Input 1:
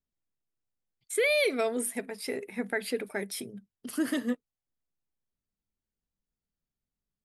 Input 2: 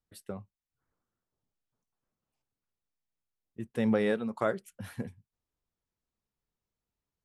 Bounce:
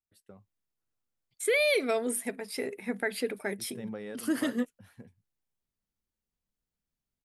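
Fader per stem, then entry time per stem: 0.0 dB, -13.0 dB; 0.30 s, 0.00 s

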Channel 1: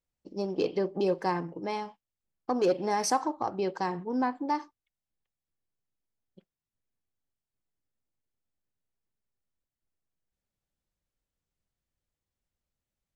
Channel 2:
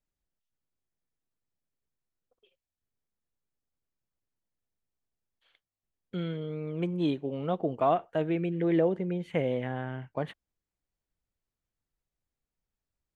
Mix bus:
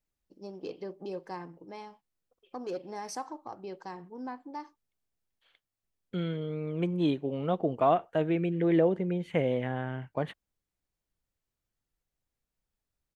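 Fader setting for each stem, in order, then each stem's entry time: -11.0 dB, +1.0 dB; 0.05 s, 0.00 s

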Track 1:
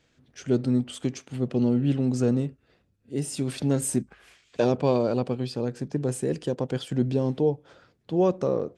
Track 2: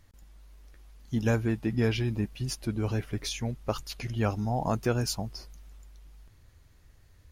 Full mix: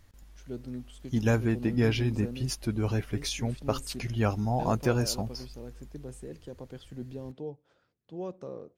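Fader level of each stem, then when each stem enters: -15.5 dB, +1.0 dB; 0.00 s, 0.00 s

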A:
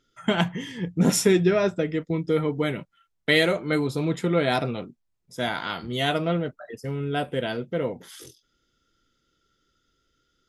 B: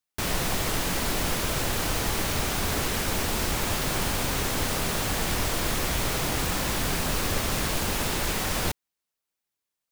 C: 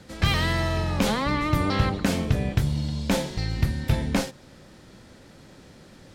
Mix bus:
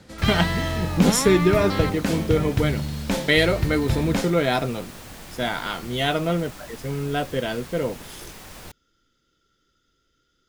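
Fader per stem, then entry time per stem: +1.5 dB, -14.0 dB, -1.0 dB; 0.00 s, 0.00 s, 0.00 s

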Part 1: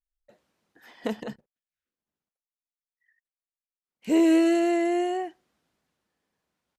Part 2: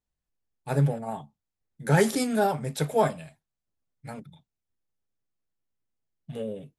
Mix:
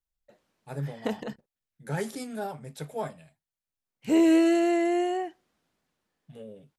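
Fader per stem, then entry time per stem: -0.5 dB, -10.5 dB; 0.00 s, 0.00 s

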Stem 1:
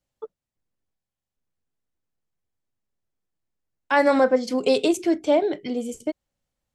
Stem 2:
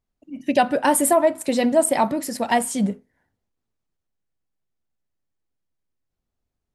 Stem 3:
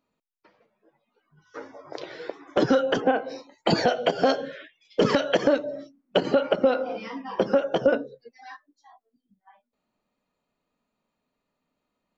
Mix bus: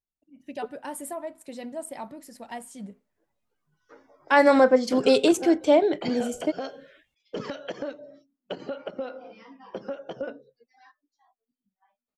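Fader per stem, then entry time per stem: +1.0 dB, -18.0 dB, -13.0 dB; 0.40 s, 0.00 s, 2.35 s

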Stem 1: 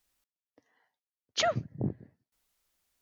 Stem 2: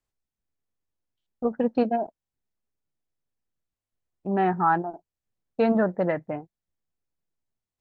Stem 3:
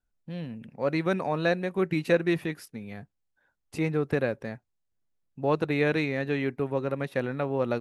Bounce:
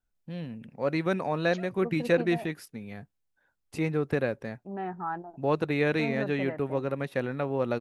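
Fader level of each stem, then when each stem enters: -19.5 dB, -12.0 dB, -1.0 dB; 0.15 s, 0.40 s, 0.00 s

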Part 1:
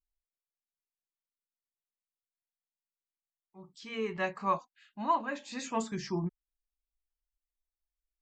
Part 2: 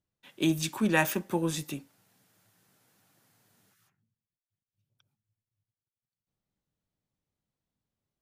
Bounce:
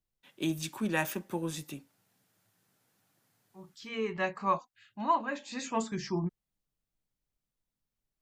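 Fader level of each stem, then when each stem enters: +1.0 dB, -5.5 dB; 0.00 s, 0.00 s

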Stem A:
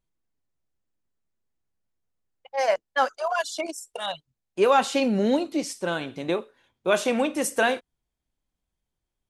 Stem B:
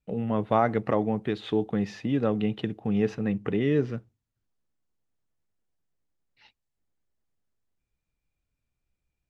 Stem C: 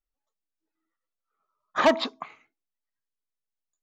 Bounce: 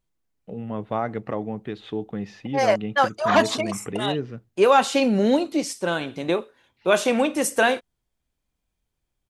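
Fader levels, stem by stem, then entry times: +3.0 dB, -3.5 dB, +0.5 dB; 0.00 s, 0.40 s, 1.50 s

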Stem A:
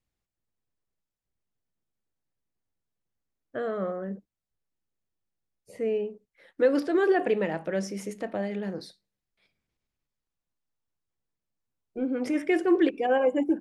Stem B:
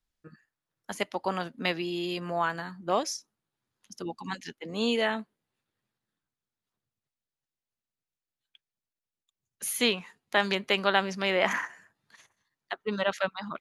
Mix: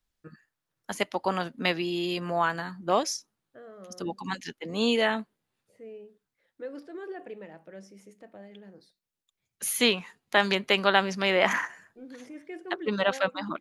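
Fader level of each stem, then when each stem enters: -16.5 dB, +2.5 dB; 0.00 s, 0.00 s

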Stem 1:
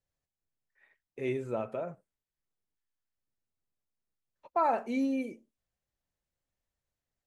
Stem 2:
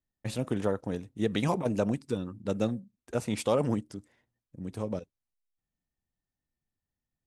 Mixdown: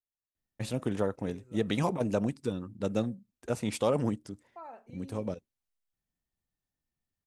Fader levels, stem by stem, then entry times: -19.0 dB, -1.0 dB; 0.00 s, 0.35 s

